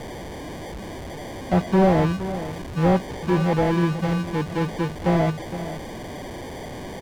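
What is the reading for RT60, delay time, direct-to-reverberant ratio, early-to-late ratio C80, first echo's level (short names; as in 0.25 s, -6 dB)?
none, 0.464 s, none, none, -12.5 dB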